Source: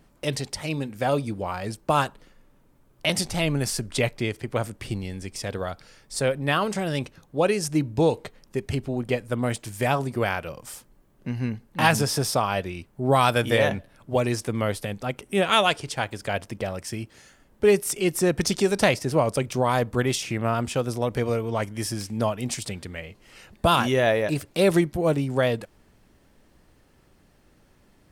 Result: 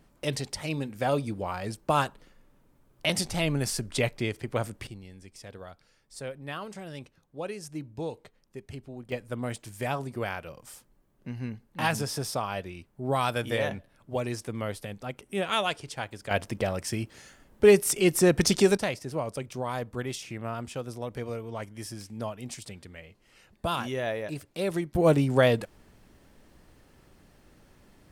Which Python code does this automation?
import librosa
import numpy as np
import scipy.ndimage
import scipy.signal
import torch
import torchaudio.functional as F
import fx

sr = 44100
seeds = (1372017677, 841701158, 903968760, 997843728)

y = fx.gain(x, sr, db=fx.steps((0.0, -3.0), (4.87, -14.0), (9.12, -7.5), (16.31, 1.0), (18.77, -10.0), (24.95, 1.5)))